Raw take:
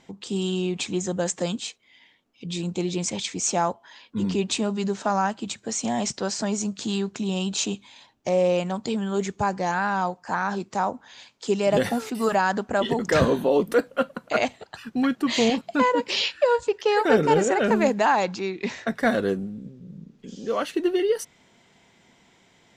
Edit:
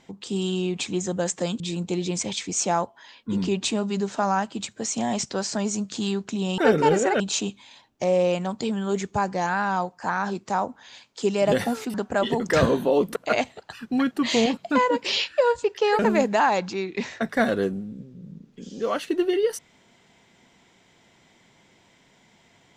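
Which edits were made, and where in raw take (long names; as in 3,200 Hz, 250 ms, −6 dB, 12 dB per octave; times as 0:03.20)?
0:01.60–0:02.47: remove
0:12.19–0:12.53: remove
0:13.75–0:14.20: remove
0:17.03–0:17.65: move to 0:07.45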